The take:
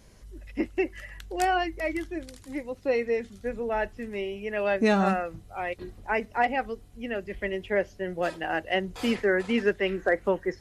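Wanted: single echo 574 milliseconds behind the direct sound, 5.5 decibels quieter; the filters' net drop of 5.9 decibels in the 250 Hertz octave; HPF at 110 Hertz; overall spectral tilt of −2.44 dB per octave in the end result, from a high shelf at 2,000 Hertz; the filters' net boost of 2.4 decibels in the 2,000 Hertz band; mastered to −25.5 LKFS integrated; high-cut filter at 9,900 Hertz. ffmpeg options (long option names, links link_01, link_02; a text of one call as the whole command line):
ffmpeg -i in.wav -af "highpass=110,lowpass=9900,equalizer=frequency=250:width_type=o:gain=-8,highshelf=frequency=2000:gain=-9,equalizer=frequency=2000:width_type=o:gain=8,aecho=1:1:574:0.531,volume=3.5dB" out.wav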